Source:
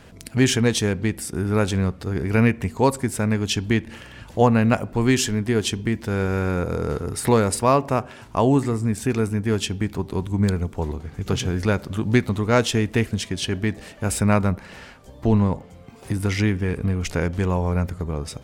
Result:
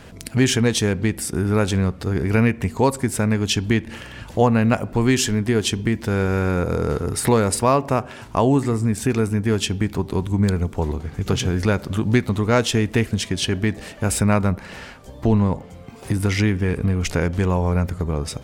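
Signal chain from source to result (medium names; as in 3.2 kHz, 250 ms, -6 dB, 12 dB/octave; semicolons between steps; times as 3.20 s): compression 1.5:1, threshold -24 dBFS, peak gain reduction 5 dB; trim +4.5 dB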